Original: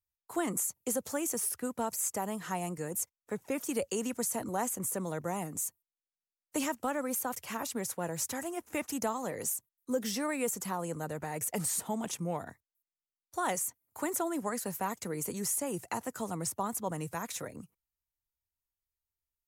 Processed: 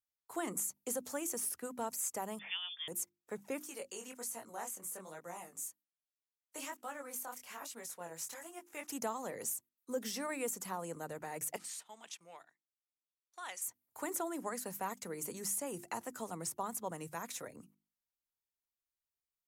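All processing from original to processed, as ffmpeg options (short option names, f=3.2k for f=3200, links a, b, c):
-filter_complex "[0:a]asettb=1/sr,asplit=3[a][b][c];[a]atrim=end=2.394[d];[b]atrim=start=2.39:end=2.88,asetpts=PTS-STARTPTS,afade=t=in:d=0.004:c=qsin,afade=t=out:st=0.486:d=0.004:c=qsin,highpass=240,lowpass=f=3.1k:t=q:w=0.5098,lowpass=f=3.1k:t=q:w=0.6013,lowpass=f=3.1k:t=q:w=0.9,lowpass=f=3.1k:t=q:w=2.563,afreqshift=-3700[e];[c]atrim=start=2.876[f];[d][e]acrossfade=d=0.004:c1=hsin:c2=qsin[g];[g][f]acrossfade=d=0.004:c1=qsin:c2=hsin,asettb=1/sr,asplit=3[h][i][j];[h]atrim=end=3.594[k];[i]atrim=start=3.59:end=8.87,asetpts=PTS-STARTPTS,afade=t=in:d=0.004:c=qsin,afade=t=out:st=5.276:d=0.004:c=qsin,lowshelf=f=450:g=-10,flanger=delay=17:depth=7.9:speed=1.2[l];[j]atrim=start=8.866[m];[k][l]acrossfade=d=0.004:c1=hsin:c2=qsin[n];[n][m]acrossfade=d=0.004:c1=qsin:c2=hsin,asettb=1/sr,asplit=3[o][p][q];[o]atrim=end=11.564[r];[p]atrim=start=11.56:end=13.62,asetpts=PTS-STARTPTS,afade=t=in:d=0.004:c=qsin,afade=t=out:st=2.056:d=0.004:c=qsin,agate=range=-9dB:threshold=-42dB:ratio=16:release=100:detection=peak,bandpass=f=3.2k:t=q:w=0.92[s];[q]atrim=start=13.616[t];[r][s]acrossfade=d=0.004:c1=hsin:c2=qsin[u];[u][t]acrossfade=d=0.004:c1=qsin:c2=hsin,lowshelf=f=130:g=-11,bandreject=f=50:t=h:w=6,bandreject=f=100:t=h:w=6,bandreject=f=150:t=h:w=6,bandreject=f=200:t=h:w=6,bandreject=f=250:t=h:w=6,bandreject=f=300:t=h:w=6,bandreject=f=350:t=h:w=6,volume=-4.5dB"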